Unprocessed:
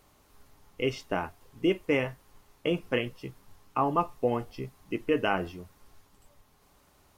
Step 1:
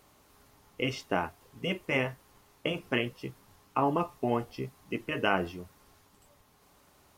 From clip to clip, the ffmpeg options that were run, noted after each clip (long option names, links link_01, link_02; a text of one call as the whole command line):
ffmpeg -i in.wav -af "afftfilt=real='re*lt(hypot(re,im),0.355)':imag='im*lt(hypot(re,im),0.355)':win_size=1024:overlap=0.75,highpass=frequency=80:poles=1,volume=1.5dB" out.wav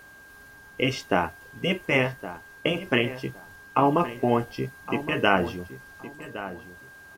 ffmpeg -i in.wav -filter_complex "[0:a]aeval=exprs='val(0)+0.002*sin(2*PI*1600*n/s)':channel_layout=same,asplit=2[link_01][link_02];[link_02]adelay=1115,lowpass=frequency=2000:poles=1,volume=-13dB,asplit=2[link_03][link_04];[link_04]adelay=1115,lowpass=frequency=2000:poles=1,volume=0.23,asplit=2[link_05][link_06];[link_06]adelay=1115,lowpass=frequency=2000:poles=1,volume=0.23[link_07];[link_01][link_03][link_05][link_07]amix=inputs=4:normalize=0,volume=6.5dB" out.wav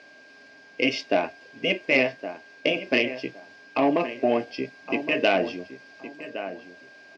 ffmpeg -i in.wav -af "asoftclip=type=tanh:threshold=-13.5dB,highpass=270,equalizer=frequency=270:width_type=q:width=4:gain=7,equalizer=frequency=630:width_type=q:width=4:gain=9,equalizer=frequency=900:width_type=q:width=4:gain=-7,equalizer=frequency=1300:width_type=q:width=4:gain=-10,equalizer=frequency=2400:width_type=q:width=4:gain=9,equalizer=frequency=4900:width_type=q:width=4:gain=8,lowpass=frequency=5600:width=0.5412,lowpass=frequency=5600:width=1.3066" out.wav